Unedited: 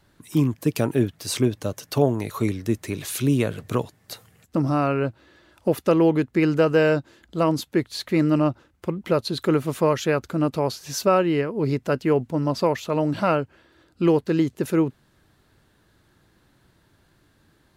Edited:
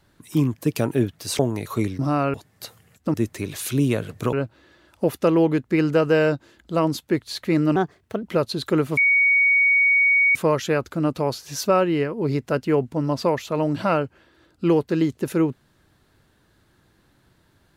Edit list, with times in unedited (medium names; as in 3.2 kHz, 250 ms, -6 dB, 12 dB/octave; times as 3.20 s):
1.39–2.03 s: delete
2.63–3.82 s: swap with 4.62–4.97 s
8.40–8.99 s: speed 125%
9.73 s: add tone 2.24 kHz -14 dBFS 1.38 s